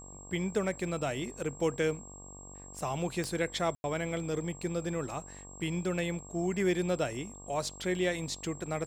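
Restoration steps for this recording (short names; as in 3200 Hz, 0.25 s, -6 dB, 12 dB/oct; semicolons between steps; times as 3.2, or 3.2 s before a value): de-click; de-hum 47.7 Hz, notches 25; notch 7600 Hz, Q 30; room tone fill 3.75–3.84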